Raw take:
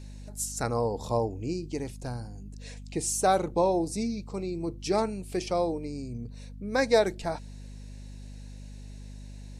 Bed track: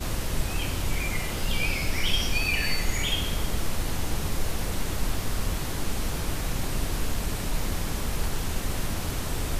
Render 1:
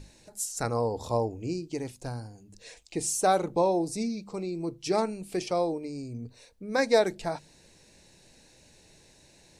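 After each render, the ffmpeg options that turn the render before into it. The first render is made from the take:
ffmpeg -i in.wav -af "bandreject=frequency=50:width_type=h:width=6,bandreject=frequency=100:width_type=h:width=6,bandreject=frequency=150:width_type=h:width=6,bandreject=frequency=200:width_type=h:width=6,bandreject=frequency=250:width_type=h:width=6" out.wav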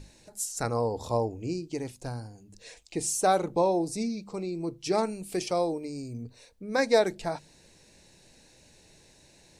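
ffmpeg -i in.wav -filter_complex "[0:a]asettb=1/sr,asplit=3[link_01][link_02][link_03];[link_01]atrim=end=5.034[link_04];[link_02]atrim=start=5.03:end=6.23,asetpts=PTS-STARTPTS,afade=type=in:duration=0.004:curve=qsin,afade=type=out:start_time=1.196:duration=0.004:curve=qsin,highshelf=frequency=7200:gain=8[link_05];[link_03]atrim=start=6.226[link_06];[link_04][link_05]acrossfade=duration=0.004:curve1=hsin:curve2=qsin[link_07];[link_07][link_06]acrossfade=duration=0.004:curve1=qsin:curve2=hsin" out.wav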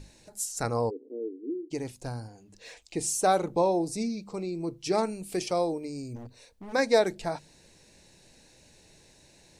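ffmpeg -i in.wav -filter_complex "[0:a]asplit=3[link_01][link_02][link_03];[link_01]afade=type=out:start_time=0.89:duration=0.02[link_04];[link_02]asuperpass=centerf=340:order=8:qfactor=1.8,afade=type=in:start_time=0.89:duration=0.02,afade=type=out:start_time=1.7:duration=0.02[link_05];[link_03]afade=type=in:start_time=1.7:duration=0.02[link_06];[link_04][link_05][link_06]amix=inputs=3:normalize=0,asettb=1/sr,asplit=3[link_07][link_08][link_09];[link_07]atrim=end=2.284[link_10];[link_08]atrim=start=2.28:end=2.82,asetpts=PTS-STARTPTS,afade=type=in:duration=0.004:curve=qsin,afade=type=out:start_time=0.536:duration=0.004:curve=qsin,asplit=2[link_11][link_12];[link_12]highpass=frequency=720:poles=1,volume=11dB,asoftclip=type=tanh:threshold=-34.5dB[link_13];[link_11][link_13]amix=inputs=2:normalize=0,lowpass=frequency=3100:poles=1,volume=-6dB[link_14];[link_09]atrim=start=2.816[link_15];[link_10][link_14]acrossfade=duration=0.004:curve1=hsin:curve2=qsin[link_16];[link_16][link_15]acrossfade=duration=0.004:curve1=qsin:curve2=hsin,asplit=3[link_17][link_18][link_19];[link_17]afade=type=out:start_time=6.15:duration=0.02[link_20];[link_18]aeval=exprs='0.0141*(abs(mod(val(0)/0.0141+3,4)-2)-1)':channel_layout=same,afade=type=in:start_time=6.15:duration=0.02,afade=type=out:start_time=6.72:duration=0.02[link_21];[link_19]afade=type=in:start_time=6.72:duration=0.02[link_22];[link_20][link_21][link_22]amix=inputs=3:normalize=0" out.wav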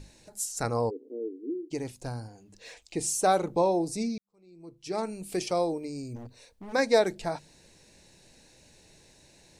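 ffmpeg -i in.wav -filter_complex "[0:a]asplit=2[link_01][link_02];[link_01]atrim=end=4.18,asetpts=PTS-STARTPTS,afade=type=out:start_time=4.176:duration=0.004:curve=hsin[link_03];[link_02]atrim=start=4.18,asetpts=PTS-STARTPTS,afade=type=in:duration=1.07:curve=qua[link_04];[link_03][link_04]concat=n=2:v=0:a=1" out.wav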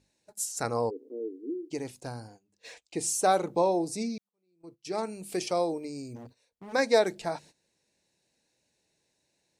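ffmpeg -i in.wav -af "highpass=frequency=180:poles=1,agate=range=-17dB:threshold=-50dB:ratio=16:detection=peak" out.wav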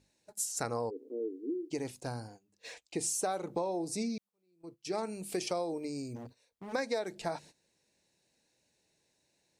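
ffmpeg -i in.wav -af "acompressor=threshold=-30dB:ratio=10" out.wav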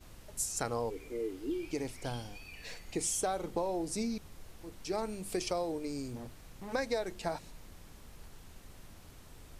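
ffmpeg -i in.wav -i bed.wav -filter_complex "[1:a]volume=-24dB[link_01];[0:a][link_01]amix=inputs=2:normalize=0" out.wav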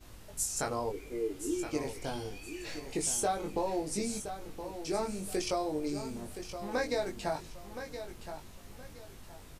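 ffmpeg -i in.wav -filter_complex "[0:a]asplit=2[link_01][link_02];[link_02]adelay=20,volume=-3dB[link_03];[link_01][link_03]amix=inputs=2:normalize=0,aecho=1:1:1020|2040|3060:0.316|0.0885|0.0248" out.wav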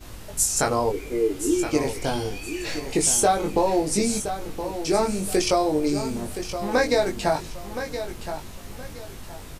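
ffmpeg -i in.wav -af "volume=11.5dB" out.wav

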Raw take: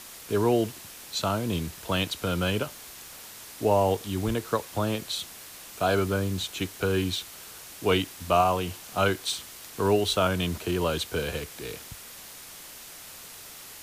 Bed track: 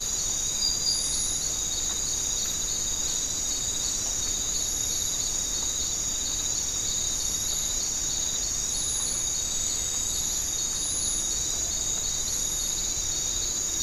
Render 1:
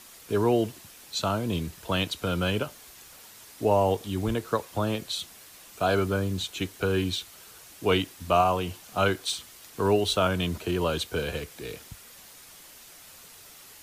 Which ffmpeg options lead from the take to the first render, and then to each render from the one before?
ffmpeg -i in.wav -af "afftdn=noise_reduction=6:noise_floor=-45" out.wav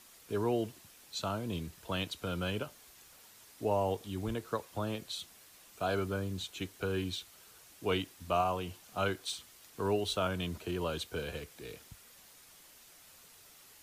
ffmpeg -i in.wav -af "volume=-8.5dB" out.wav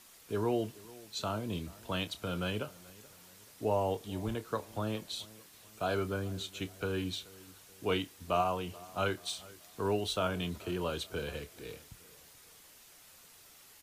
ffmpeg -i in.wav -filter_complex "[0:a]asplit=2[link_01][link_02];[link_02]adelay=28,volume=-13.5dB[link_03];[link_01][link_03]amix=inputs=2:normalize=0,asplit=2[link_04][link_05];[link_05]adelay=430,lowpass=frequency=2000:poles=1,volume=-21dB,asplit=2[link_06][link_07];[link_07]adelay=430,lowpass=frequency=2000:poles=1,volume=0.45,asplit=2[link_08][link_09];[link_09]adelay=430,lowpass=frequency=2000:poles=1,volume=0.45[link_10];[link_04][link_06][link_08][link_10]amix=inputs=4:normalize=0" out.wav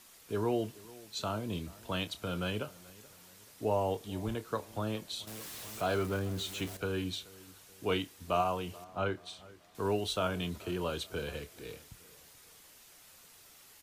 ffmpeg -i in.wav -filter_complex "[0:a]asettb=1/sr,asplit=3[link_01][link_02][link_03];[link_01]atrim=end=5.274[link_04];[link_02]atrim=start=5.27:end=6.77,asetpts=PTS-STARTPTS,afade=type=in:duration=0.004:curve=qsin,afade=type=out:start_time=1.496:duration=0.004:curve=qsin,aeval=exprs='val(0)+0.5*0.00891*sgn(val(0))':channel_layout=same[link_05];[link_03]atrim=start=6.766[link_06];[link_04][link_05]acrossfade=duration=0.004:curve1=hsin:curve2=qsin[link_07];[link_07][link_06]acrossfade=duration=0.004:curve1=qsin:curve2=hsin,asettb=1/sr,asplit=3[link_08][link_09][link_10];[link_08]atrim=end=8.844[link_11];[link_09]atrim=start=8.84:end=9.75,asetpts=PTS-STARTPTS,afade=type=in:duration=0.004:curve=qsin,afade=type=out:start_time=0.906:duration=0.004:curve=qsin,lowpass=frequency=1700:poles=1[link_12];[link_10]atrim=start=9.746[link_13];[link_11][link_12]acrossfade=duration=0.004:curve1=hsin:curve2=qsin[link_14];[link_14][link_13]acrossfade=duration=0.004:curve1=qsin:curve2=hsin" out.wav

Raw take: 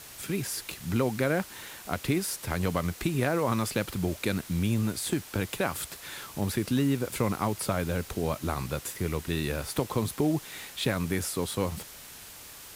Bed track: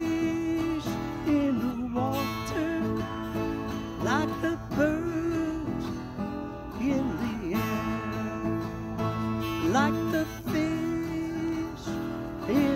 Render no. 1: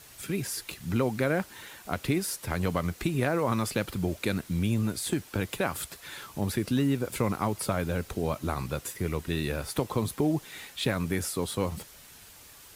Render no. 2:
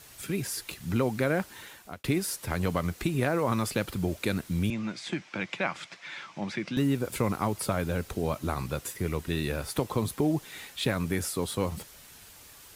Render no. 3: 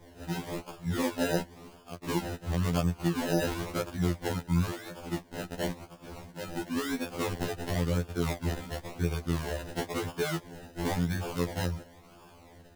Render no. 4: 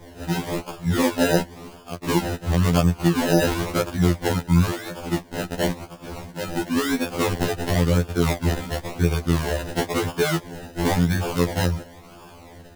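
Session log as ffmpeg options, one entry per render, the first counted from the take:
ffmpeg -i in.wav -af "afftdn=noise_reduction=6:noise_floor=-47" out.wav
ffmpeg -i in.wav -filter_complex "[0:a]asettb=1/sr,asplit=3[link_01][link_02][link_03];[link_01]atrim=end=4.704[link_04];[link_02]atrim=start=4.7:end=6.77,asetpts=PTS-STARTPTS,afade=type=in:duration=0.004:curve=qsin,afade=type=out:start_time=2.066:duration=0.004:curve=qsin,highpass=frequency=160:width=0.5412,highpass=frequency=160:width=1.3066,equalizer=frequency=260:width_type=q:width=4:gain=-7,equalizer=frequency=430:width_type=q:width=4:gain=-10,equalizer=frequency=2200:width_type=q:width=4:gain=8,equalizer=frequency=4300:width_type=q:width=4:gain=-4,lowpass=frequency=5700:width=0.5412,lowpass=frequency=5700:width=1.3066[link_05];[link_03]atrim=start=6.766[link_06];[link_04][link_05]acrossfade=duration=0.004:curve1=hsin:curve2=qsin[link_07];[link_07][link_06]acrossfade=duration=0.004:curve1=qsin:curve2=hsin,asplit=2[link_08][link_09];[link_08]atrim=end=2.04,asetpts=PTS-STARTPTS,afade=type=out:start_time=1.5:duration=0.54:curve=qsin[link_10];[link_09]atrim=start=2.04,asetpts=PTS-STARTPTS,afade=type=in:duration=0.004:curve=hsin[link_11];[link_10][link_11]concat=n=2:v=0:a=1" out.wav
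ffmpeg -i in.wav -af "acrusher=samples=31:mix=1:aa=0.000001:lfo=1:lforange=18.6:lforate=0.96,afftfilt=real='re*2*eq(mod(b,4),0)':imag='im*2*eq(mod(b,4),0)':win_size=2048:overlap=0.75" out.wav
ffmpeg -i in.wav -af "volume=9.5dB" out.wav

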